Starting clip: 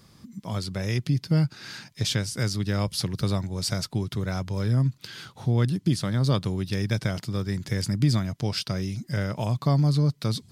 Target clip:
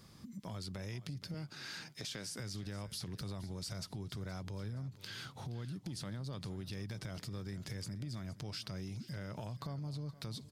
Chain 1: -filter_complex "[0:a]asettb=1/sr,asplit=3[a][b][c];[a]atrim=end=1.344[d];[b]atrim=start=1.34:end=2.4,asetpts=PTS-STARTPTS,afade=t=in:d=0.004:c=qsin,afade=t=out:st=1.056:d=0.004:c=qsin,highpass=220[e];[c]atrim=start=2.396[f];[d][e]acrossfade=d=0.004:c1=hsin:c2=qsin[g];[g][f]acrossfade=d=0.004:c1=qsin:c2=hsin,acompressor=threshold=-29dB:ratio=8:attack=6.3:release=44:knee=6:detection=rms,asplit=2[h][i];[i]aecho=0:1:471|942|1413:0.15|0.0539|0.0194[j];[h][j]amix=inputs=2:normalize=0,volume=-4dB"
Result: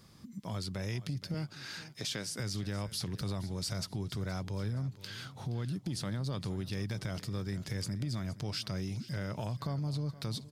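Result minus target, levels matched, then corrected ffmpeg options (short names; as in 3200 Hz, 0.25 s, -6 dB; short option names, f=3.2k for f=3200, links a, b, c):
compressor: peak gain reduction -7 dB
-filter_complex "[0:a]asettb=1/sr,asplit=3[a][b][c];[a]atrim=end=1.344[d];[b]atrim=start=1.34:end=2.4,asetpts=PTS-STARTPTS,afade=t=in:d=0.004:c=qsin,afade=t=out:st=1.056:d=0.004:c=qsin,highpass=220[e];[c]atrim=start=2.396[f];[d][e]acrossfade=d=0.004:c1=hsin:c2=qsin[g];[g][f]acrossfade=d=0.004:c1=qsin:c2=hsin,acompressor=threshold=-37dB:ratio=8:attack=6.3:release=44:knee=6:detection=rms,asplit=2[h][i];[i]aecho=0:1:471|942|1413:0.15|0.0539|0.0194[j];[h][j]amix=inputs=2:normalize=0,volume=-4dB"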